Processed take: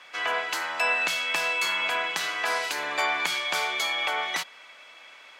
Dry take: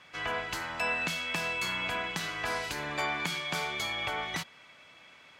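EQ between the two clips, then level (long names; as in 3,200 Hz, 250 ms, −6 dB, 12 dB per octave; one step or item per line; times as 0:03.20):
high-pass filter 490 Hz 12 dB per octave
+6.5 dB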